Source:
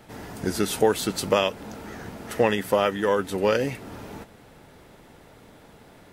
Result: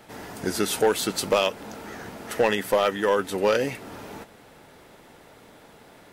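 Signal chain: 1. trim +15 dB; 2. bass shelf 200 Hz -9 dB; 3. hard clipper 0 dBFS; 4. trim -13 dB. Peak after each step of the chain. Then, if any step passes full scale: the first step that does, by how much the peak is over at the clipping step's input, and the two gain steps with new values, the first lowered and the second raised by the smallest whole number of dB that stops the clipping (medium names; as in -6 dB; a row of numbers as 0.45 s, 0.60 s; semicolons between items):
+8.5 dBFS, +8.0 dBFS, 0.0 dBFS, -13.0 dBFS; step 1, 8.0 dB; step 1 +7 dB, step 4 -5 dB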